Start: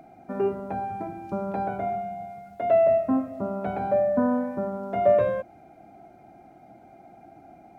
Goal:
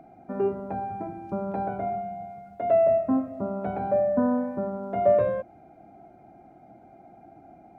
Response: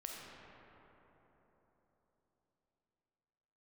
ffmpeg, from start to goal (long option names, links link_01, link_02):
-af "highshelf=frequency=2100:gain=-10"